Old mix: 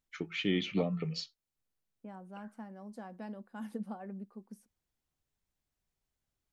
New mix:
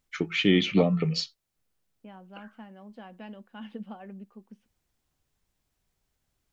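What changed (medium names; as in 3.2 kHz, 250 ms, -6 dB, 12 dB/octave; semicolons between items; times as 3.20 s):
first voice +9.5 dB; second voice: add resonant low-pass 3 kHz, resonance Q 4.8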